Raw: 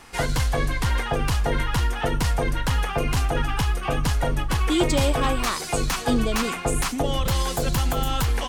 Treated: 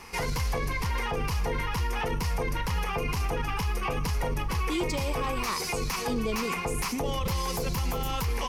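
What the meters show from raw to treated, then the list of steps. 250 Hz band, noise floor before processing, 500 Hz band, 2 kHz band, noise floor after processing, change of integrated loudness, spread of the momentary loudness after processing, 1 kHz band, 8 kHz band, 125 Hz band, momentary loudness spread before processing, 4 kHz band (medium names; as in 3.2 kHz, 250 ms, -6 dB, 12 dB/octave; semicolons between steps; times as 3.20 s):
-7.0 dB, -31 dBFS, -5.5 dB, -4.5 dB, -32 dBFS, -6.0 dB, 1 LU, -4.5 dB, -6.5 dB, -6.5 dB, 3 LU, -6.5 dB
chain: rippled EQ curve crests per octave 0.83, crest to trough 8 dB; peak limiter -21 dBFS, peak gain reduction 11 dB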